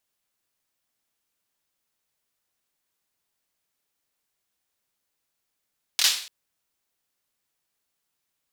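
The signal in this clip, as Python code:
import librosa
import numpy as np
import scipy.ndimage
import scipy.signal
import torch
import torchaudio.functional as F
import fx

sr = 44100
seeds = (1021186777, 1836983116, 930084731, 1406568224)

y = fx.drum_clap(sr, seeds[0], length_s=0.29, bursts=3, spacing_ms=25, hz=3900.0, decay_s=0.49)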